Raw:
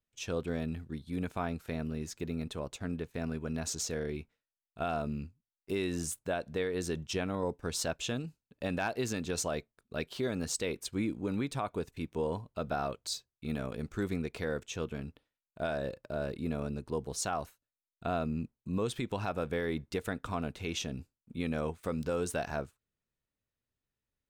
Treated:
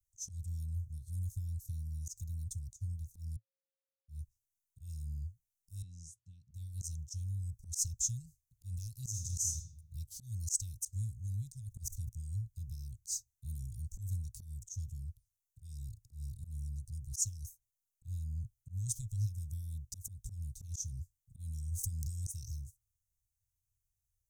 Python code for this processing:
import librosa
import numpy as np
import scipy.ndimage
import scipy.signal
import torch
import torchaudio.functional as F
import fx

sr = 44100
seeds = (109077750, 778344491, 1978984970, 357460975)

y = fx.bandpass_edges(x, sr, low_hz=180.0, high_hz=2300.0, at=(5.82, 6.51))
y = fx.reverb_throw(y, sr, start_s=9.09, length_s=0.47, rt60_s=1.1, drr_db=2.5)
y = fx.sustainer(y, sr, db_per_s=84.0, at=(11.68, 12.09))
y = fx.env_flatten(y, sr, amount_pct=50, at=(21.71, 22.24), fade=0.02)
y = fx.edit(y, sr, fx.bleep(start_s=3.36, length_s=0.72, hz=539.0, db=-23.5), tone=tone)
y = scipy.signal.sosfilt(scipy.signal.cheby1(4, 1.0, [110.0, 6100.0], 'bandstop', fs=sr, output='sos'), y)
y = fx.dynamic_eq(y, sr, hz=6300.0, q=1.9, threshold_db=-58.0, ratio=4.0, max_db=5)
y = fx.auto_swell(y, sr, attack_ms=117.0)
y = F.gain(torch.from_numpy(y), 7.5).numpy()